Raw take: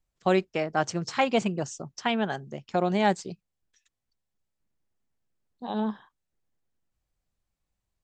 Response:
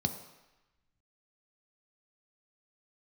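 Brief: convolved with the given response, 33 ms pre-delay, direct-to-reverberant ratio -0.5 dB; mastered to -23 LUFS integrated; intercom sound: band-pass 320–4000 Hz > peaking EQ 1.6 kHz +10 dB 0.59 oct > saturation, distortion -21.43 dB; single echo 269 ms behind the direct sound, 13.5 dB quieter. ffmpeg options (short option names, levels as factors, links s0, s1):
-filter_complex "[0:a]aecho=1:1:269:0.211,asplit=2[s0][s1];[1:a]atrim=start_sample=2205,adelay=33[s2];[s1][s2]afir=irnorm=-1:irlink=0,volume=0.668[s3];[s0][s3]amix=inputs=2:normalize=0,highpass=320,lowpass=4000,equalizer=f=1600:t=o:w=0.59:g=10,asoftclip=threshold=0.398,volume=1.06"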